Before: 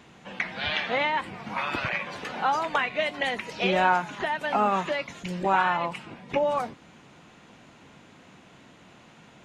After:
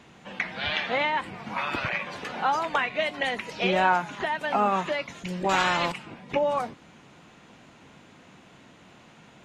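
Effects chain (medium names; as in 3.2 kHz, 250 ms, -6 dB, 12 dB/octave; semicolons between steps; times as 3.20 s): wow and flutter 19 cents; 5.49–5.92 s: spectrum-flattening compressor 2:1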